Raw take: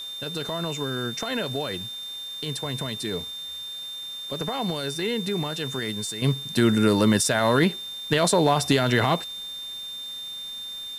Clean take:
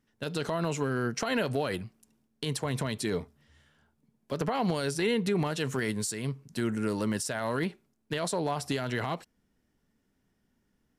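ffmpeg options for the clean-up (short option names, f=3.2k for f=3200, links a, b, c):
-af "adeclick=t=4,bandreject=f=3.6k:w=30,afwtdn=0.004,asetnsamples=n=441:p=0,asendcmd='6.22 volume volume -10.5dB',volume=0dB"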